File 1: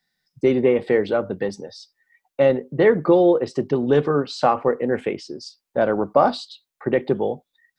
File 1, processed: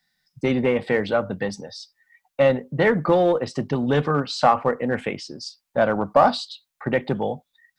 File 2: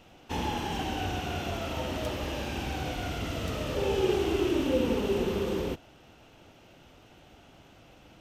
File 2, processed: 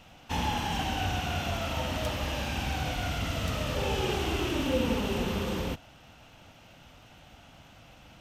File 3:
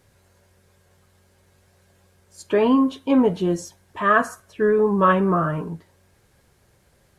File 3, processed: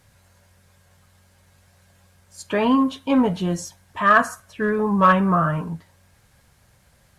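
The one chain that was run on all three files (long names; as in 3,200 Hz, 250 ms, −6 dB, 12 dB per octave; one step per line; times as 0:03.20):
in parallel at −6.5 dB: asymmetric clip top −12 dBFS
on the sum: parametric band 380 Hz −11 dB 0.79 octaves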